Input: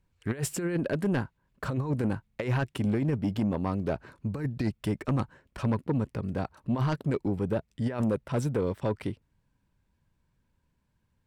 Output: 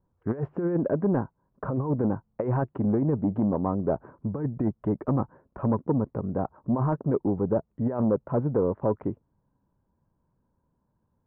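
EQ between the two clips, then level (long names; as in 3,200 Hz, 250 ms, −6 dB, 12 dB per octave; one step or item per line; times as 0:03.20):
low-pass filter 1,100 Hz 24 dB per octave
low-shelf EQ 110 Hz −11 dB
+5.5 dB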